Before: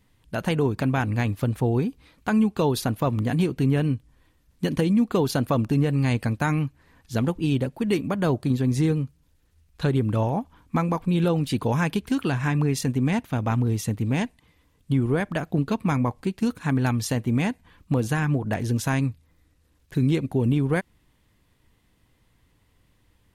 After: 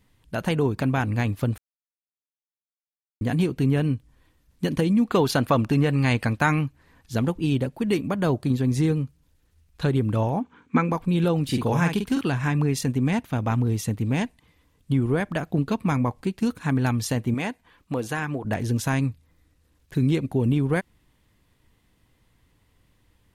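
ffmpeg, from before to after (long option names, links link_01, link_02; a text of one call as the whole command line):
ffmpeg -i in.wav -filter_complex "[0:a]asettb=1/sr,asplit=3[link_01][link_02][link_03];[link_01]atrim=end=5.054[link_04];[link_02]atrim=start=5.05:end=6.61,asetpts=PTS-STARTPTS,afade=type=in:duration=0.004:curve=qsin,afade=type=out:start_time=1.556:duration=0.004:curve=qsin,equalizer=frequency=1800:width=0.38:gain=6[link_05];[link_03]atrim=start=6.606[link_06];[link_04][link_05]acrossfade=duration=0.004:curve1=hsin:curve2=qsin[link_07];[link_07][link_06]acrossfade=duration=0.004:curve1=qsin:curve2=hsin,asplit=3[link_08][link_09][link_10];[link_08]afade=type=out:start_time=10.4:duration=0.02[link_11];[link_09]highpass=150,equalizer=frequency=240:width_type=q:width=4:gain=9,equalizer=frequency=440:width_type=q:width=4:gain=9,equalizer=frequency=640:width_type=q:width=4:gain=-7,equalizer=frequency=1500:width_type=q:width=4:gain=8,equalizer=frequency=2300:width_type=q:width=4:gain=7,equalizer=frequency=5000:width_type=q:width=4:gain=-9,lowpass=frequency=7000:width=0.5412,lowpass=frequency=7000:width=1.3066,afade=type=in:start_time=10.4:duration=0.02,afade=type=out:start_time=10.9:duration=0.02[link_12];[link_10]afade=type=in:start_time=10.9:duration=0.02[link_13];[link_11][link_12][link_13]amix=inputs=3:normalize=0,asettb=1/sr,asplit=3[link_14][link_15][link_16];[link_14]atrim=end=11.444[link_17];[link_15]atrim=start=11.44:end=12.21,asetpts=PTS-STARTPTS,afade=type=in:duration=0.004:curve=qsin,afade=type=out:start_time=0.766:duration=0.004:curve=qsin,asplit=2[link_18][link_19];[link_19]adelay=47,volume=-5dB[link_20];[link_18][link_20]amix=inputs=2:normalize=0,atrim=end_sample=33957[link_21];[link_16]atrim=start=12.206[link_22];[link_17][link_21]acrossfade=duration=0.004:curve1=hsin:curve2=qsin[link_23];[link_23][link_22]acrossfade=duration=0.004:curve1=qsin:curve2=hsin,asettb=1/sr,asplit=3[link_24][link_25][link_26];[link_24]atrim=end=17.344[link_27];[link_25]atrim=start=17.34:end=18.45,asetpts=PTS-STARTPTS,afade=type=in:duration=0.004:curve=qsin,afade=type=out:start_time=1.106:duration=0.004:curve=qsin,bass=frequency=250:gain=-10,treble=frequency=4000:gain=-2[link_28];[link_26]atrim=start=18.446[link_29];[link_27][link_28]acrossfade=duration=0.004:curve1=hsin:curve2=qsin[link_30];[link_30][link_29]acrossfade=duration=0.004:curve1=qsin:curve2=hsin,asplit=3[link_31][link_32][link_33];[link_31]atrim=end=1.58,asetpts=PTS-STARTPTS,afade=type=out:start_time=1.576:duration=0.004:curve=hsin[link_34];[link_32]atrim=start=1.58:end=3.21,asetpts=PTS-STARTPTS,volume=0[link_35];[link_33]atrim=start=3.21,asetpts=PTS-STARTPTS,afade=type=in:duration=0.004:curve=hsin[link_36];[link_34][link_35][link_36]concat=n=3:v=0:a=1" out.wav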